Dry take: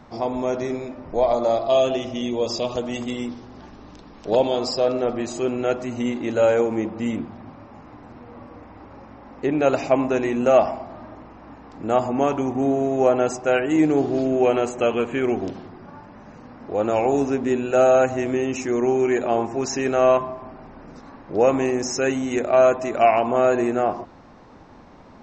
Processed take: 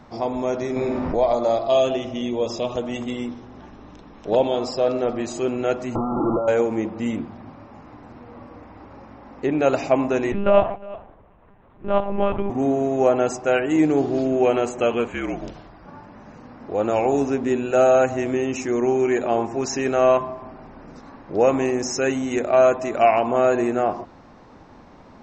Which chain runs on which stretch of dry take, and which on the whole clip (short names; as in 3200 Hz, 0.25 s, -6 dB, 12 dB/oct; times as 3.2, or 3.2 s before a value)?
0.76–1.19 air absorption 75 m + flutter echo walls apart 8.8 m, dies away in 0.47 s + fast leveller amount 70%
1.93–4.86 high shelf 6700 Hz -8 dB + notch 4600 Hz, Q 5
5.95–6.48 infinite clipping + brick-wall FIR low-pass 1400 Hz + comb 5.9 ms, depth 47%
10.32–12.5 gate -31 dBFS, range -10 dB + echo 0.36 s -20 dB + monotone LPC vocoder at 8 kHz 200 Hz
15.08–15.86 bell 270 Hz -9 dB 1.4 oct + frequency shift -56 Hz
whole clip: dry